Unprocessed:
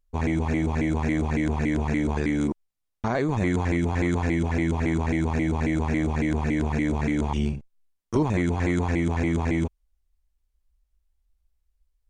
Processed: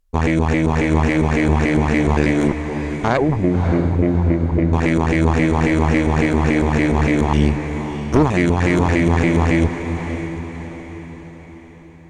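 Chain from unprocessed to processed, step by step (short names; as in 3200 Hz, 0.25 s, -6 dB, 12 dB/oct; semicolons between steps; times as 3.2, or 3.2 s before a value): 3.17–4.73 formant sharpening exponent 3; added harmonics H 4 -12 dB, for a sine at -11.5 dBFS; diffused feedback echo 0.593 s, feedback 49%, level -8.5 dB; gain +6.5 dB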